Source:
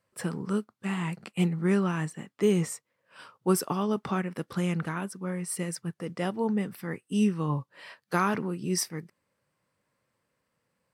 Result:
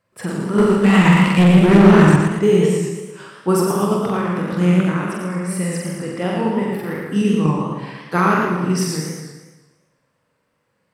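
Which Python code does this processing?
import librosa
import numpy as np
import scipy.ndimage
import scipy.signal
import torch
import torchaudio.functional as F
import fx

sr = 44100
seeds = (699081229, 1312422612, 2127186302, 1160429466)

p1 = x + fx.room_flutter(x, sr, wall_m=7.7, rt60_s=1.0, dry=0)
p2 = fx.leveller(p1, sr, passes=3, at=(0.58, 2.16))
p3 = fx.level_steps(p2, sr, step_db=12)
p4 = p2 + F.gain(torch.from_numpy(p3), -3.0).numpy()
p5 = fx.high_shelf(p4, sr, hz=4600.0, db=-7.0)
p6 = fx.echo_warbled(p5, sr, ms=115, feedback_pct=49, rate_hz=2.8, cents=135, wet_db=-5)
y = F.gain(torch.from_numpy(p6), 3.5).numpy()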